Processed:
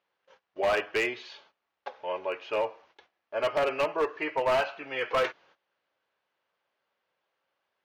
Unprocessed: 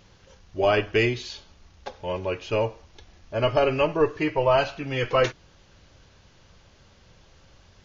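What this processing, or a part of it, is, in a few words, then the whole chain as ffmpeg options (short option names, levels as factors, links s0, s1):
walkie-talkie: -af "highpass=580,lowpass=2500,asoftclip=type=hard:threshold=0.0891,agate=range=0.126:threshold=0.00126:ratio=16:detection=peak"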